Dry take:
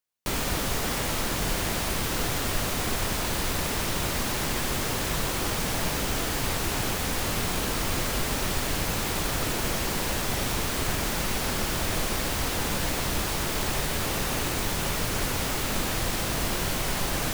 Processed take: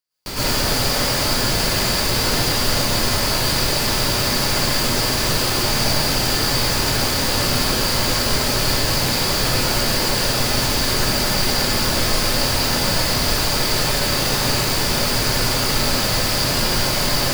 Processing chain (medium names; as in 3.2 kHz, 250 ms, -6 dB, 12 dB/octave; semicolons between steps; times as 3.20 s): peaking EQ 4.7 kHz +13 dB 0.25 oct; plate-style reverb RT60 0.62 s, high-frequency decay 0.85×, pre-delay 95 ms, DRR -9.5 dB; trim -2 dB